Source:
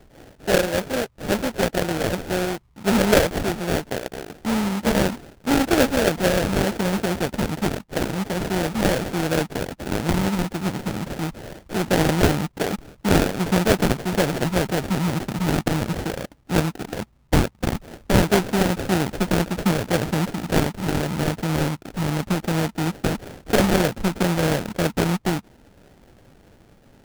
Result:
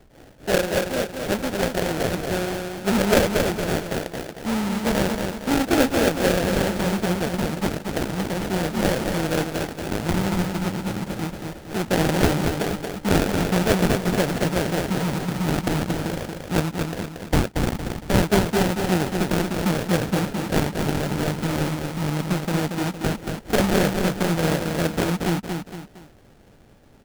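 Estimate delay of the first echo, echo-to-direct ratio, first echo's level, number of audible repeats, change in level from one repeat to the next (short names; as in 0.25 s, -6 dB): 0.23 s, -4.0 dB, -5.0 dB, 3, -7.5 dB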